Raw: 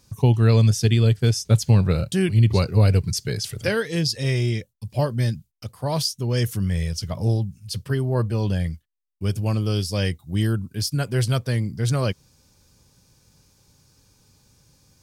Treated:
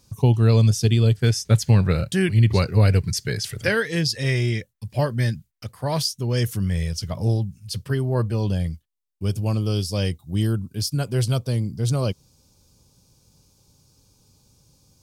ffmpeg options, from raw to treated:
ffmpeg -i in.wav -af "asetnsamples=nb_out_samples=441:pad=0,asendcmd='1.19 equalizer g 6;6 equalizer g 0;8.35 equalizer g -7;11.34 equalizer g -13',equalizer=frequency=1800:width_type=o:width=0.74:gain=-5" out.wav

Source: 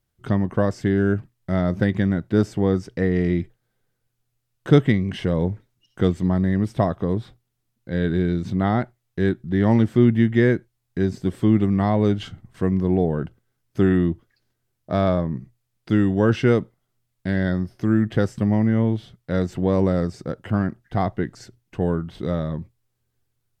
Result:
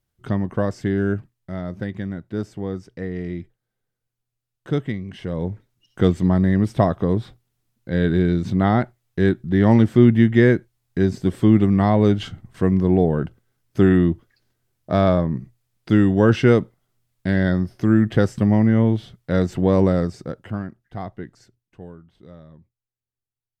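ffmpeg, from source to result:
ffmpeg -i in.wav -af "volume=9.5dB,afade=type=out:start_time=1.13:duration=0.4:silence=0.473151,afade=type=in:start_time=5.17:duration=0.94:silence=0.281838,afade=type=out:start_time=19.82:duration=0.86:silence=0.251189,afade=type=out:start_time=21.26:duration=0.69:silence=0.316228" out.wav

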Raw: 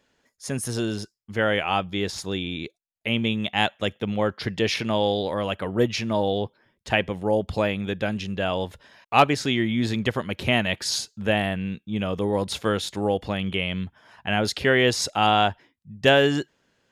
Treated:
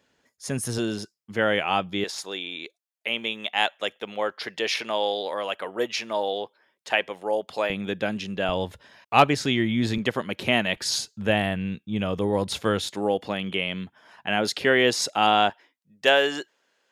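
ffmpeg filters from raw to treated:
ffmpeg -i in.wav -af "asetnsamples=nb_out_samples=441:pad=0,asendcmd='0.78 highpass f 140;2.04 highpass f 500;7.7 highpass f 170;8.49 highpass f 63;9.98 highpass f 170;10.76 highpass f 63;12.87 highpass f 200;15.5 highpass f 480',highpass=60" out.wav

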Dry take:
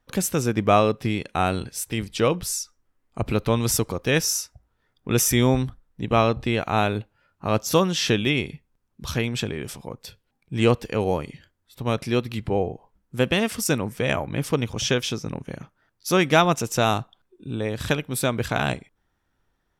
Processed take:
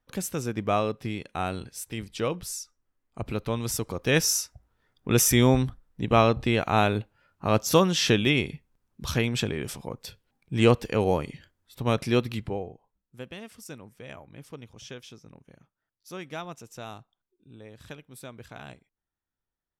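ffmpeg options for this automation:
ffmpeg -i in.wav -af "volume=-0.5dB,afade=type=in:start_time=3.8:duration=0.41:silence=0.446684,afade=type=out:start_time=12.26:duration=0.34:silence=0.298538,afade=type=out:start_time=12.6:duration=0.65:silence=0.375837" out.wav

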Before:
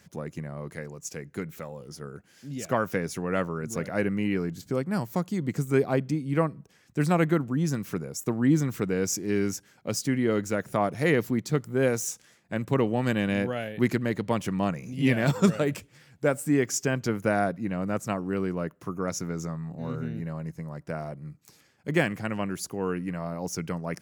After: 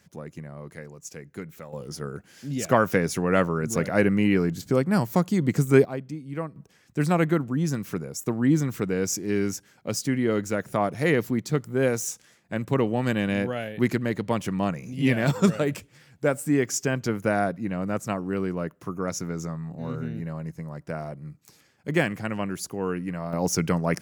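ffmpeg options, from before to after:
ffmpeg -i in.wav -af "asetnsamples=nb_out_samples=441:pad=0,asendcmd='1.73 volume volume 6dB;5.85 volume volume -7dB;6.56 volume volume 1dB;23.33 volume volume 8dB',volume=-3dB" out.wav

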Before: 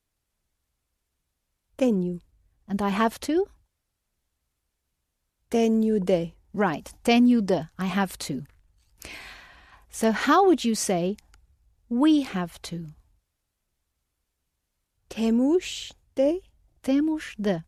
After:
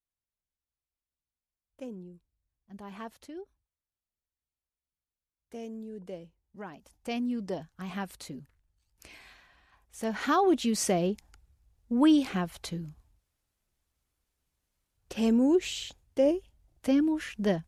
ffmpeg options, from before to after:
ffmpeg -i in.wav -af "volume=-2dB,afade=type=in:start_time=6.71:duration=0.84:silence=0.398107,afade=type=in:start_time=10:duration=0.91:silence=0.354813" out.wav

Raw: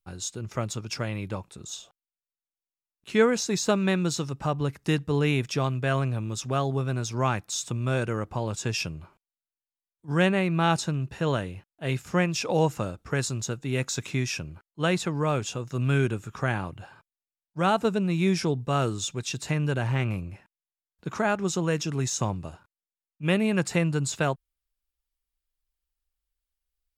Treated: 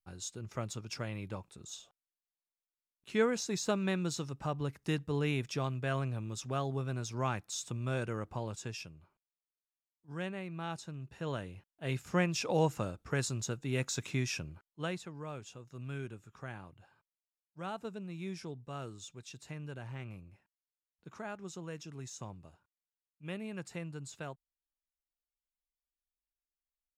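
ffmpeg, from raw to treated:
ffmpeg -i in.wav -af "volume=2.5dB,afade=type=out:start_time=8.38:duration=0.5:silence=0.375837,afade=type=in:start_time=10.87:duration=1.29:silence=0.281838,afade=type=out:start_time=14.49:duration=0.54:silence=0.266073" out.wav

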